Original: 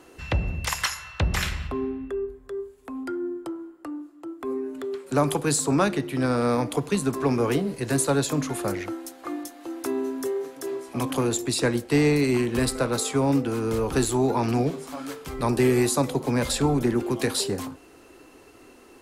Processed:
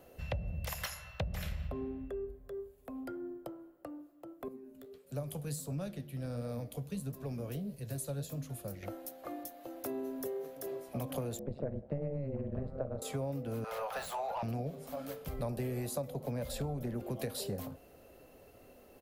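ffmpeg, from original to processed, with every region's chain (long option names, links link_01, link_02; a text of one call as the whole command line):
ffmpeg -i in.wav -filter_complex "[0:a]asettb=1/sr,asplit=3[link_01][link_02][link_03];[link_01]atrim=end=4.484[link_04];[link_02]atrim=start=4.48:end=8.83,asetpts=PTS-STARTPTS,afade=type=in:duration=0.004:curve=qsin,afade=type=out:start_time=4.346:duration=0.004:curve=qsin,equalizer=frequency=770:width=0.38:gain=-10,bandreject=frequency=2100:width=23,flanger=delay=5.7:depth=9.9:regen=63:speed=1.5:shape=triangular[link_05];[link_03]atrim=start=8.826[link_06];[link_04][link_05]acrossfade=duration=0.004:curve1=hsin:curve2=qsin[link_07];[link_07][link_06]acrossfade=duration=0.004:curve1=qsin:curve2=hsin,asettb=1/sr,asplit=3[link_08][link_09][link_10];[link_08]atrim=end=11.394[link_11];[link_09]atrim=start=11.39:end=13.02,asetpts=PTS-STARTPTS,afade=type=in:duration=0.004:curve=qsin,afade=type=out:start_time=1.626:duration=0.004:curve=qsin,lowpass=1400,tiltshelf=frequency=1100:gain=4,tremolo=f=140:d=1[link_12];[link_10]atrim=start=13.016[link_13];[link_11][link_12]acrossfade=duration=0.004:curve1=hsin:curve2=qsin[link_14];[link_14][link_13]acrossfade=duration=0.004:curve1=qsin:curve2=hsin,asettb=1/sr,asplit=3[link_15][link_16][link_17];[link_15]atrim=end=13.644[link_18];[link_16]atrim=start=13.64:end=14.43,asetpts=PTS-STARTPTS,afade=type=in:duration=0.004:curve=qsin,afade=type=out:start_time=0.786:duration=0.004:curve=qsin,highpass=frequency=740:width=0.5412,highpass=frequency=740:width=1.3066,asplit=2[link_19][link_20];[link_20]highpass=frequency=720:poles=1,volume=20dB,asoftclip=type=tanh:threshold=-14dB[link_21];[link_19][link_21]amix=inputs=2:normalize=0,lowpass=frequency=1400:poles=1,volume=-6dB[link_22];[link_17]atrim=start=14.426[link_23];[link_18][link_22]acrossfade=duration=0.004:curve1=hsin:curve2=qsin[link_24];[link_24][link_23]acrossfade=duration=0.004:curve1=qsin:curve2=hsin,firequalizer=gain_entry='entry(190,0);entry(320,-13);entry(570,4);entry(930,-11);entry(3000,-9);entry(8200,-12);entry(14000,5)':delay=0.05:min_phase=1,acompressor=threshold=-32dB:ratio=6,volume=-2dB" out.wav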